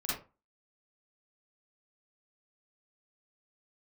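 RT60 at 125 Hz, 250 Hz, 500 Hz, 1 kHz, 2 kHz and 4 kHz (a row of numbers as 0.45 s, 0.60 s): 0.35 s, 0.35 s, 0.30 s, 0.30 s, 0.25 s, 0.20 s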